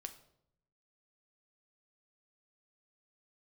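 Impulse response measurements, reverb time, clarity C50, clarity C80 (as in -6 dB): 0.75 s, 12.5 dB, 16.0 dB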